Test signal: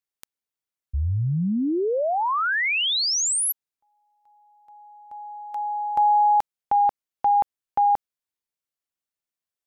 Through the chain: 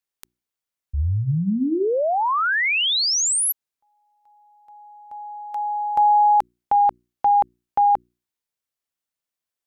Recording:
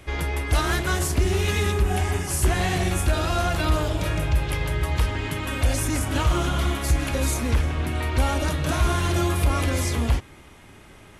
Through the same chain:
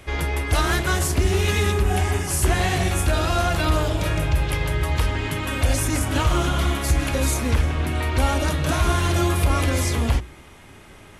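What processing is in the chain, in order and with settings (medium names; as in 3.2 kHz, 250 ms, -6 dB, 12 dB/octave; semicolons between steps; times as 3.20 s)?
hum notches 60/120/180/240/300/360 Hz; trim +2.5 dB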